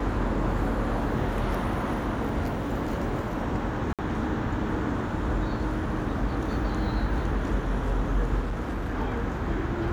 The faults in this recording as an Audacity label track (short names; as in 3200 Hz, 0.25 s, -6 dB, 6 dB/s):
3.930000	3.990000	gap 57 ms
8.400000	8.990000	clipped -25.5 dBFS